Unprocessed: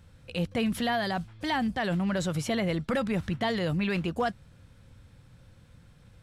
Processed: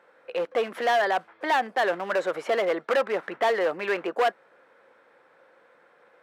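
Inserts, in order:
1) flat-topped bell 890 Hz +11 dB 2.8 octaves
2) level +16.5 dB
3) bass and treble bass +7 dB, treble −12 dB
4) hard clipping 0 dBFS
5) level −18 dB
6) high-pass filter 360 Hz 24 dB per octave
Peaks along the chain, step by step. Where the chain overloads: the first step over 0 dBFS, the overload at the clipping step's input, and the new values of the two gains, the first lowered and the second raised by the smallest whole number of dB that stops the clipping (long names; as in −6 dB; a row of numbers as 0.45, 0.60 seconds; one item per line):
−7.5, +9.0, +9.0, 0.0, −18.0, −12.5 dBFS
step 2, 9.0 dB
step 2 +7.5 dB, step 5 −9 dB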